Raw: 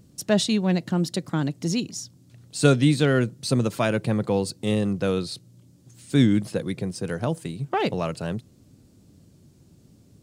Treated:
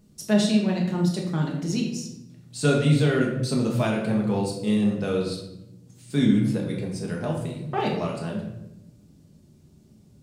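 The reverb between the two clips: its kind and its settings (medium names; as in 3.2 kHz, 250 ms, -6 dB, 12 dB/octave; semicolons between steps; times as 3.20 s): simulated room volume 300 m³, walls mixed, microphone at 1.4 m; trim -6 dB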